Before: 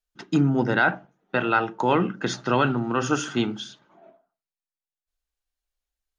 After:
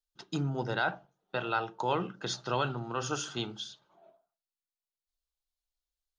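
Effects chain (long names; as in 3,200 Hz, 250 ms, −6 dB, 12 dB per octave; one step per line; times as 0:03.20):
octave-band graphic EQ 250/2,000/4,000 Hz −11/−9/+6 dB
level −6 dB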